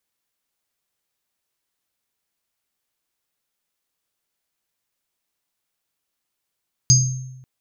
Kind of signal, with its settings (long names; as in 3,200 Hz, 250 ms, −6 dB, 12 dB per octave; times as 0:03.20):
inharmonic partials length 0.54 s, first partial 128 Hz, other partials 4,900/6,410 Hz, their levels −5/1 dB, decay 1.03 s, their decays 0.33/0.55 s, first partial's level −11 dB